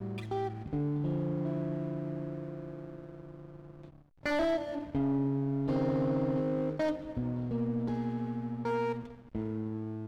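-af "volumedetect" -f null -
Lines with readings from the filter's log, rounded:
mean_volume: -33.4 dB
max_volume: -24.9 dB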